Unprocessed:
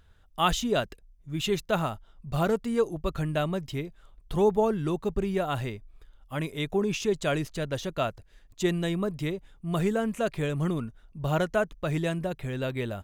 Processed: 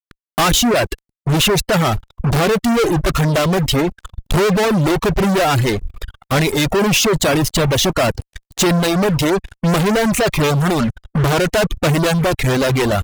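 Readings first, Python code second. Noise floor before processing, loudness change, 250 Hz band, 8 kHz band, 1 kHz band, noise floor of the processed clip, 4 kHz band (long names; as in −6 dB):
−58 dBFS, +13.0 dB, +13.0 dB, +20.0 dB, +12.5 dB, −82 dBFS, +17.0 dB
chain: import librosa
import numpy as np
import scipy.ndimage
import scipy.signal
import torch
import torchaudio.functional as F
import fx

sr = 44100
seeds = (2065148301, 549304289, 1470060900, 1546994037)

y = fx.fuzz(x, sr, gain_db=47.0, gate_db=-48.0)
y = fx.dereverb_blind(y, sr, rt60_s=0.96)
y = y * librosa.db_to_amplitude(1.0)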